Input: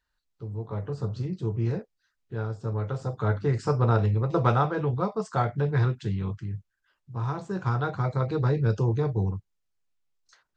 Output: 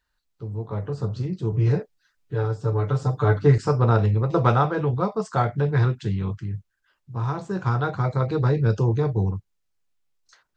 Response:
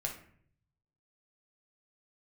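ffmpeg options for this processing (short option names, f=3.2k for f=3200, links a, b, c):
-filter_complex "[0:a]asettb=1/sr,asplit=3[a][b][c];[a]atrim=end=1.524[d];[b]atrim=start=1.52:end=3.58,asetpts=PTS-STARTPTS,afade=t=in:d=0.004:c=qsin,afade=t=out:st=2.056:d=0.004:c=qsin,aecho=1:1:6.8:0.99,atrim=end_sample=90846[e];[c]atrim=start=3.576[f];[d][e]acrossfade=d=0.004:c1=hsin:c2=qsin[g];[g][f]acrossfade=d=0.004:c1=qsin:c2=hsin,volume=3.5dB"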